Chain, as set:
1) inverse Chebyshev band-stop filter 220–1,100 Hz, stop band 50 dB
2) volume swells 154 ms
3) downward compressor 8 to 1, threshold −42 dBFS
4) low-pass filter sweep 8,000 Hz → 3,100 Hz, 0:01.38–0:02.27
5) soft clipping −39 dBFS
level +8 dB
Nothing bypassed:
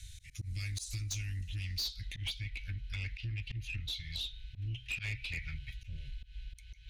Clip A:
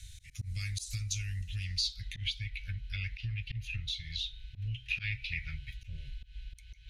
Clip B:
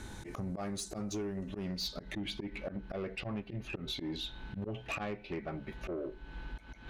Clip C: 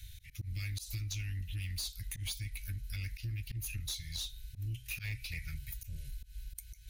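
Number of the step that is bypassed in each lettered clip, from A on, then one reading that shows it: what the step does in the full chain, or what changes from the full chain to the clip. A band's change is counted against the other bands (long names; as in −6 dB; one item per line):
5, distortion level −15 dB
1, 250 Hz band +20.0 dB
4, 8 kHz band +4.0 dB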